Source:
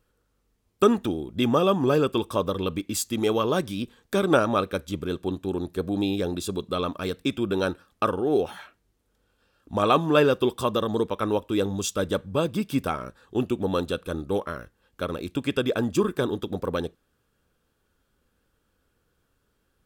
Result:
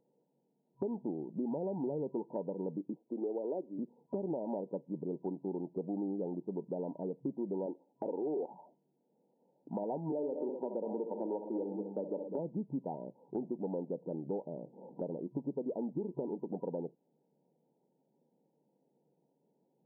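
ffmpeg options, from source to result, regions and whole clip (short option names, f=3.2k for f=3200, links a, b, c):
-filter_complex "[0:a]asettb=1/sr,asplit=3[a][b][c];[a]atrim=end=2.954[d];[b]atrim=start=2.95:end=3.79,asetpts=PTS-STARTPTS,afade=t=in:d=0.004:c=qsin,afade=t=out:st=0.836:d=0.004:c=qsin,highpass=f=280:w=0.5412,highpass=f=280:w=1.3066,equalizer=f=890:w=4:g=-9[e];[c]atrim=start=3.786[f];[d][e]acrossfade=d=0.004:c1=hsin:c2=qsin[g];[g][f]acrossfade=d=0.004:c1=qsin:c2=hsin,asettb=1/sr,asplit=3[h][i][j];[h]atrim=end=7.664[k];[i]atrim=start=7.66:end=8.5,asetpts=PTS-STARTPTS,afade=t=in:d=0.004:c=qsin,afade=t=out:st=0.836:d=0.004:c=qsin,lowshelf=f=190:t=q:w=1.5:g=-13.5,asoftclip=type=hard:threshold=-21dB[l];[j]atrim=start=8.496[m];[k][l]acrossfade=d=0.004:c1=hsin:c2=qsin[n];[n][m]acrossfade=d=0.004:c1=qsin:c2=hsin,asettb=1/sr,asplit=3[o][p][q];[o]atrim=end=10.124[r];[p]atrim=start=10.12:end=12.39,asetpts=PTS-STARTPTS,afade=t=in:d=0.004:c=qsin,afade=t=out:st=2.266:d=0.004:c=qsin,highpass=f=210:w=0.5412,highpass=f=210:w=1.3066,aecho=1:1:64|111|202|252:0.316|0.141|0.282|0.224,atrim=end_sample=100107[s];[q]atrim=start=12.386[t];[r][s]acrossfade=d=0.004:c1=hsin:c2=qsin[u];[u][t]acrossfade=d=0.004:c1=qsin:c2=hsin,asettb=1/sr,asplit=3[v][w][x];[v]atrim=end=13.454[y];[w]atrim=start=13.45:end=15.18,asetpts=PTS-STARTPTS,afade=t=in:d=0.004:c=qsin,afade=t=out:st=1.726:d=0.004:c=qsin,asuperstop=centerf=1500:order=4:qfactor=0.99,acompressor=mode=upward:threshold=-29dB:ratio=2.5:attack=3.2:release=140:knee=2.83:detection=peak[z];[x]atrim=start=15.176[aa];[y][z]acrossfade=d=0.004:c1=hsin:c2=qsin[ab];[ab][aa]acrossfade=d=0.004:c1=qsin:c2=hsin,afftfilt=real='re*between(b*sr/4096,130,970)':imag='im*between(b*sr/4096,130,970)':win_size=4096:overlap=0.75,alimiter=limit=-16.5dB:level=0:latency=1:release=190,acompressor=threshold=-39dB:ratio=2.5"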